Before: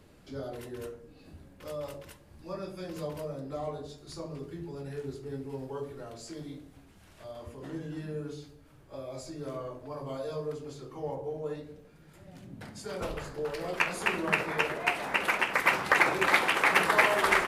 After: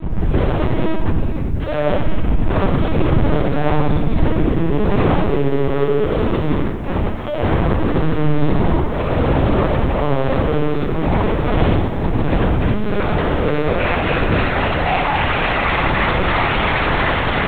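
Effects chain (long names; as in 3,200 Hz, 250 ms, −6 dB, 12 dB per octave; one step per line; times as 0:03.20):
wind on the microphone 110 Hz −35 dBFS, from 0:03.05 190 Hz, from 0:04.80 460 Hz
Bessel low-pass filter 2,700 Hz, order 2
noise gate with hold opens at −43 dBFS
automatic gain control gain up to 3 dB
fuzz pedal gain 40 dB, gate −47 dBFS
flutter between parallel walls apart 10.3 metres, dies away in 0.83 s
convolution reverb RT60 0.45 s, pre-delay 8 ms, DRR −3.5 dB
linear-prediction vocoder at 8 kHz pitch kept
feedback echo at a low word length 91 ms, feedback 55%, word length 6 bits, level −13 dB
level −12 dB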